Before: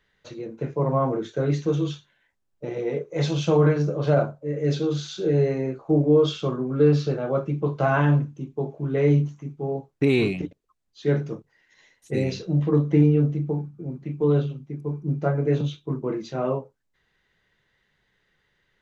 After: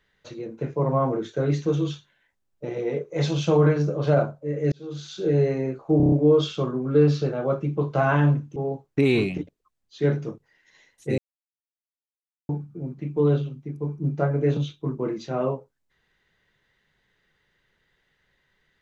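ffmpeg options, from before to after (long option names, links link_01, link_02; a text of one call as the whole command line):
ffmpeg -i in.wav -filter_complex "[0:a]asplit=10[link_01][link_02][link_03][link_04][link_05][link_06][link_07][link_08][link_09][link_10];[link_01]atrim=end=4.72,asetpts=PTS-STARTPTS,afade=type=out:start_time=4.716:duration=0.004:curve=hsin[link_11];[link_02]atrim=start=4.72:end=6.002,asetpts=PTS-STARTPTS,afade=type=in:duration=0.57[link_12];[link_03]atrim=start=5.968:end=6.002[link_13];[link_04]atrim=start=5.968:end=6.002[link_14];[link_05]atrim=start=5.968:end=6.002[link_15];[link_06]atrim=start=5.968:end=6.002[link_16];[link_07]atrim=start=5.968:end=8.412[link_17];[link_08]atrim=start=9.598:end=12.22,asetpts=PTS-STARTPTS,afade=type=out:start_time=2.618:duration=0.004:curve=hsin[link_18];[link_09]atrim=start=12.22:end=13.53,asetpts=PTS-STARTPTS,volume=0[link_19];[link_10]atrim=start=13.53,asetpts=PTS-STARTPTS,afade=type=in:duration=0.004:curve=hsin[link_20];[link_11][link_12]concat=n=2:v=0:a=1[link_21];[link_21][link_13]acrossfade=duration=0.004:curve1=hsin:curve2=hsin[link_22];[link_22][link_14]acrossfade=duration=0.004:curve1=hsin:curve2=hsin[link_23];[link_23][link_15]acrossfade=duration=0.004:curve1=hsin:curve2=hsin[link_24];[link_24][link_16]acrossfade=duration=0.004:curve1=hsin:curve2=hsin[link_25];[link_25][link_17]acrossfade=duration=0.004:curve1=hsin:curve2=hsin[link_26];[link_18][link_19][link_20]concat=n=3:v=0:a=1[link_27];[link_26][link_27]acrossfade=duration=0.004:curve1=hsin:curve2=hsin" out.wav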